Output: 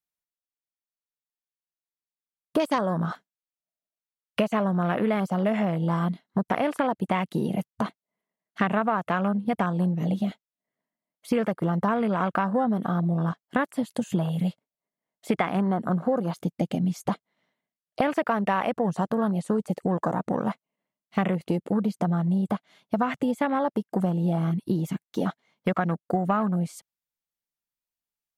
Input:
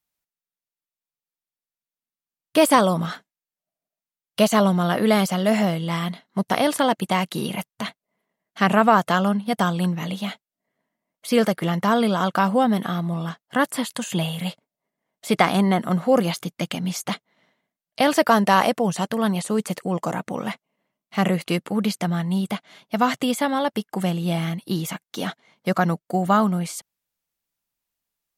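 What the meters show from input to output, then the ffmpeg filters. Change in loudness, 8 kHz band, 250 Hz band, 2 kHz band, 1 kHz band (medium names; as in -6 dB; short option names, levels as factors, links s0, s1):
-4.5 dB, -16.0 dB, -3.0 dB, -7.0 dB, -6.0 dB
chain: -af "afwtdn=0.0355,acompressor=threshold=0.0398:ratio=6,volume=2"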